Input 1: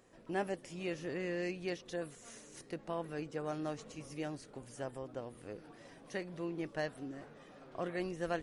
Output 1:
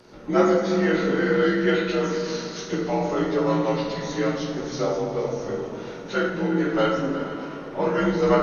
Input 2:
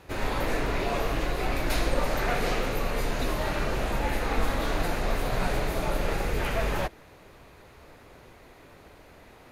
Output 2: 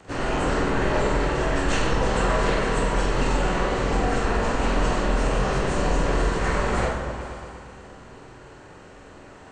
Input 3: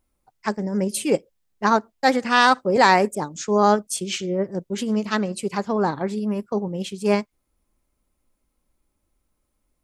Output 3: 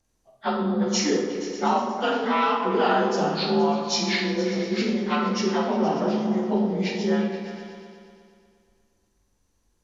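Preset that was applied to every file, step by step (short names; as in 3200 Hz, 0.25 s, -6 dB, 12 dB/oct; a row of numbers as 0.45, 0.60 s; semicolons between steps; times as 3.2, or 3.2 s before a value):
inharmonic rescaling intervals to 87%; compressor 5:1, threshold -25 dBFS; harmonic-percussive split harmonic -4 dB; on a send: repeats that get brighter 0.118 s, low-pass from 200 Hz, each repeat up 2 oct, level -6 dB; on the sum: plate-style reverb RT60 1 s, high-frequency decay 0.75×, DRR -1.5 dB; match loudness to -24 LUFS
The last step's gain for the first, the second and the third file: +17.5, +6.5, +4.0 dB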